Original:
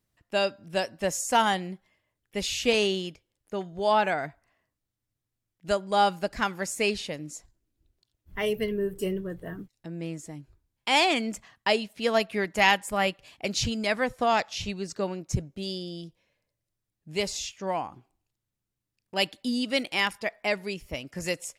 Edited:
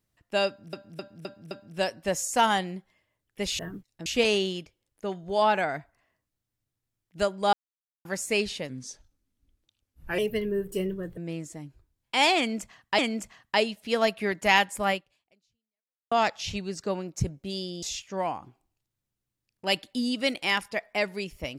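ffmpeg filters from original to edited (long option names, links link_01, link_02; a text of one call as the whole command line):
ffmpeg -i in.wav -filter_complex "[0:a]asplit=15[link_01][link_02][link_03][link_04][link_05][link_06][link_07][link_08][link_09][link_10][link_11][link_12][link_13][link_14][link_15];[link_01]atrim=end=0.732[link_16];[link_02]atrim=start=0.468:end=0.732[link_17];[link_03]atrim=start=0.468:end=0.732[link_18];[link_04]atrim=start=0.468:end=0.732[link_19];[link_05]atrim=start=0.468:end=2.552[link_20];[link_06]atrim=start=9.438:end=9.912[link_21];[link_07]atrim=start=2.548:end=6.02,asetpts=PTS-STARTPTS,afade=type=out:start_time=3.468:duration=0.004:curve=hsin[link_22];[link_08]atrim=start=6.02:end=6.54,asetpts=PTS-STARTPTS,volume=0[link_23];[link_09]atrim=start=6.54:end=7.184,asetpts=PTS-STARTPTS,afade=type=in:duration=0.004:curve=hsin[link_24];[link_10]atrim=start=7.18:end=8.45,asetpts=PTS-STARTPTS,asetrate=37485,aresample=44100[link_25];[link_11]atrim=start=8.446:end=9.442[link_26];[link_12]atrim=start=9.908:end=11.722[link_27];[link_13]atrim=start=11.108:end=14.24,asetpts=PTS-STARTPTS,afade=type=out:start_time=1.922:duration=1.21:curve=exp[link_28];[link_14]atrim=start=14.24:end=15.952,asetpts=PTS-STARTPTS,afade=type=in:duration=0.004:curve=hsin[link_29];[link_15]atrim=start=17.318[link_30];[link_16][link_17]acrossfade=duration=0.004:curve1=hsin:curve2=hsin[link_31];[link_31][link_18]acrossfade=duration=0.004:curve1=hsin:curve2=hsin[link_32];[link_32][link_19]acrossfade=duration=0.004:curve1=hsin:curve2=hsin[link_33];[link_33][link_20]acrossfade=duration=0.004:curve1=hsin:curve2=hsin[link_34];[link_34][link_21]acrossfade=duration=0.004:curve1=hsin:curve2=hsin[link_35];[link_22][link_23][link_24]concat=n=3:v=0:a=1[link_36];[link_35][link_36]acrossfade=duration=0.004:curve1=hsin:curve2=hsin[link_37];[link_37][link_25]acrossfade=duration=0.004:curve1=hsin:curve2=hsin[link_38];[link_38][link_26]acrossfade=duration=0.004:curve1=hsin:curve2=hsin[link_39];[link_39][link_27]acrossfade=duration=0.004:curve1=hsin:curve2=hsin[link_40];[link_28][link_29]concat=n=2:v=0:a=1[link_41];[link_40][link_41]acrossfade=duration=0.004:curve1=hsin:curve2=hsin[link_42];[link_42][link_30]acrossfade=duration=0.004:curve1=hsin:curve2=hsin" out.wav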